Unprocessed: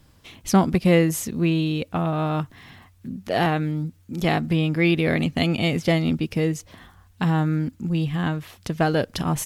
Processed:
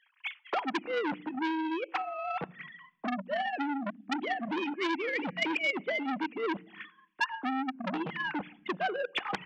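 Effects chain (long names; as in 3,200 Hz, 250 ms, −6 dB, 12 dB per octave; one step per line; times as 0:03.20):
three sine waves on the formant tracks
reversed playback
downward compressor 5 to 1, threshold −32 dBFS, peak gain reduction 18 dB
reversed playback
convolution reverb RT60 0.70 s, pre-delay 3 ms, DRR 12.5 dB
transient designer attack +10 dB, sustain −6 dB
saturating transformer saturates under 2,700 Hz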